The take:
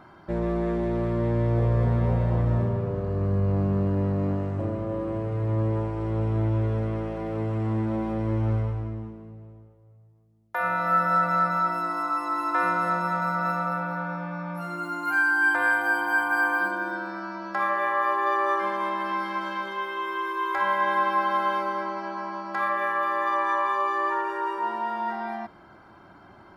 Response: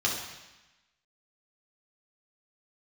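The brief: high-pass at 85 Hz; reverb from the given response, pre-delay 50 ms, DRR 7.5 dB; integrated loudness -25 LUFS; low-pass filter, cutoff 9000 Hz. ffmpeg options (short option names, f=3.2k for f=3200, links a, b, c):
-filter_complex "[0:a]highpass=85,lowpass=9k,asplit=2[a][b];[1:a]atrim=start_sample=2205,adelay=50[c];[b][c]afir=irnorm=-1:irlink=0,volume=-17.5dB[d];[a][d]amix=inputs=2:normalize=0"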